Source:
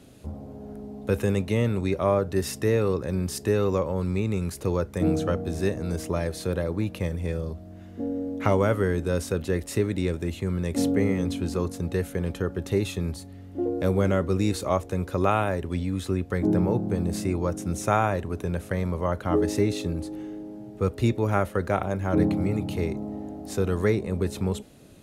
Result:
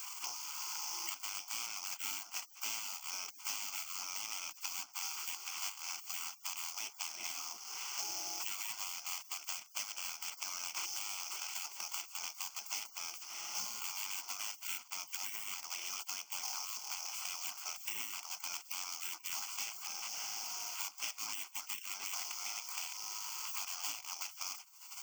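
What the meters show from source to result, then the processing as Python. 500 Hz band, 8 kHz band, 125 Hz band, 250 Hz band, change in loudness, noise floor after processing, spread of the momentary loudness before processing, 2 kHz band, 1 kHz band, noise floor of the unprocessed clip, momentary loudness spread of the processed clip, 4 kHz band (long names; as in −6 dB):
−38.5 dB, +3.5 dB, below −40 dB, below −40 dB, −13.0 dB, −57 dBFS, 10 LU, −8.5 dB, −15.5 dB, −43 dBFS, 3 LU, +1.5 dB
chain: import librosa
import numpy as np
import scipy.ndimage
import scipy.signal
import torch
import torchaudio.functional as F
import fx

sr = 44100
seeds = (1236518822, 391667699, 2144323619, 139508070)

y = scipy.signal.medfilt(x, 3)
y = fx.recorder_agc(y, sr, target_db=-16.0, rise_db_per_s=15.0, max_gain_db=30)
y = fx.sample_hold(y, sr, seeds[0], rate_hz=5800.0, jitter_pct=20)
y = fx.high_shelf(y, sr, hz=2300.0, db=10.0)
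y = fx.spec_gate(y, sr, threshold_db=-25, keep='weak')
y = scipy.signal.sosfilt(scipy.signal.bessel(4, 280.0, 'highpass', norm='mag', fs=sr, output='sos'), y)
y = fx.high_shelf(y, sr, hz=9300.0, db=-4.0)
y = fx.fixed_phaser(y, sr, hz=2600.0, stages=8)
y = fx.band_squash(y, sr, depth_pct=100)
y = F.gain(torch.from_numpy(y), -3.0).numpy()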